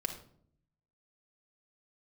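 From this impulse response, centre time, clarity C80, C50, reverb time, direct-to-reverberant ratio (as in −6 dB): 15 ms, 12.5 dB, 8.0 dB, 0.60 s, 4.5 dB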